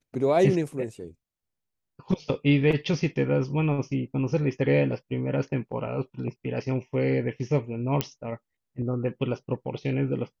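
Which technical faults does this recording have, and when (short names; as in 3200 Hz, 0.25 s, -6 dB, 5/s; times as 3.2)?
8.01 pop -9 dBFS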